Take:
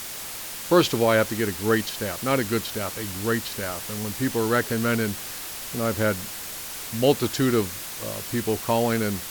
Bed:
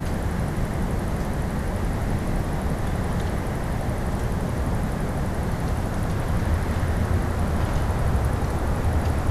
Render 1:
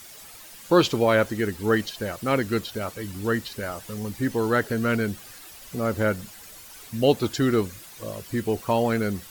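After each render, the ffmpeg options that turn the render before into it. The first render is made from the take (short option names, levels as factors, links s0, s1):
-af "afftdn=nr=12:nf=-35"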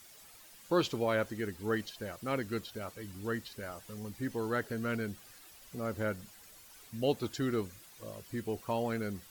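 -af "volume=0.282"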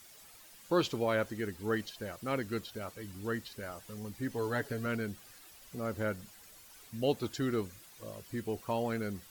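-filter_complex "[0:a]asettb=1/sr,asplit=3[s0][s1][s2];[s0]atrim=end=4.354[s3];[s1]atrim=start=4.35:end=4.86,asetpts=PTS-STARTPTS,afade=t=in:d=0.004:c=qsin,afade=t=out:st=0.506:d=0.004:c=qsin,aecho=1:1:7.1:0.58,atrim=end_sample=22491[s4];[s2]atrim=start=4.856[s5];[s3][s4]acrossfade=d=0.004:c1=hsin:c2=qsin[s6];[s6][s5]acrossfade=d=0.004:c1=qsin:c2=hsin"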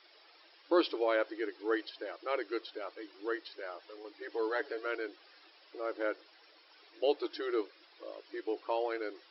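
-af "lowshelf=f=390:g=3.5,afftfilt=real='re*between(b*sr/4096,300,5500)':imag='im*between(b*sr/4096,300,5500)':win_size=4096:overlap=0.75"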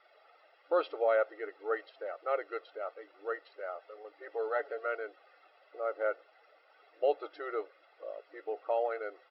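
-af "lowpass=1700,aecho=1:1:1.5:0.8"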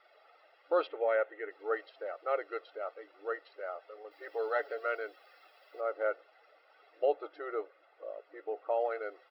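-filter_complex "[0:a]asettb=1/sr,asplit=3[s0][s1][s2];[s0]atrim=end=0.874[s3];[s1]atrim=start=0.87:end=1.51,asetpts=PTS-STARTPTS,afade=t=in:d=0.004:c=qsin,afade=t=out:st=0.636:d=0.004:c=qsin,highpass=280,equalizer=f=670:t=q:w=4:g=-4,equalizer=f=1200:t=q:w=4:g=-5,equalizer=f=1800:t=q:w=4:g=4,lowpass=f=3200:w=0.5412,lowpass=f=3200:w=1.3066[s4];[s2]atrim=start=1.506[s5];[s3][s4]acrossfade=d=0.004:c1=hsin:c2=qsin[s6];[s6][s5]acrossfade=d=0.004:c1=qsin:c2=hsin,asettb=1/sr,asplit=3[s7][s8][s9];[s7]atrim=end=4.114[s10];[s8]atrim=start=4.11:end=5.81,asetpts=PTS-STARTPTS,afade=t=in:d=0.004:c=qsin,afade=t=out:st=1.696:d=0.004:c=qsin,aemphasis=mode=production:type=75kf[s11];[s9]atrim=start=5.806[s12];[s10][s11]acrossfade=d=0.004:c1=hsin:c2=qsin[s13];[s13][s12]acrossfade=d=0.004:c1=qsin:c2=hsin,asettb=1/sr,asplit=3[s14][s15][s16];[s14]atrim=end=7.054[s17];[s15]atrim=start=7.05:end=8.8,asetpts=PTS-STARTPTS,afade=t=in:d=0.004:c=qsin,afade=t=out:st=1.746:d=0.004:c=qsin,highshelf=f=3200:g=-10[s18];[s16]atrim=start=8.796[s19];[s17][s18]acrossfade=d=0.004:c1=hsin:c2=qsin[s20];[s20][s19]acrossfade=d=0.004:c1=qsin:c2=hsin"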